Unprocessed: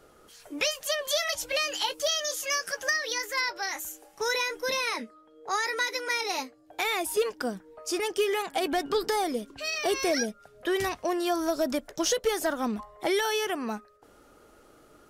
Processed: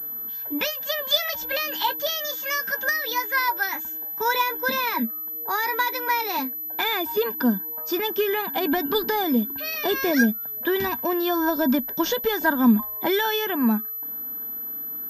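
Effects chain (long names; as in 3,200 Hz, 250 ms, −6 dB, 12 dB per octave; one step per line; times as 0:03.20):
hollow resonant body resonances 230/960/1,600/3,500 Hz, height 16 dB, ringing for 45 ms
switching amplifier with a slow clock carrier 12,000 Hz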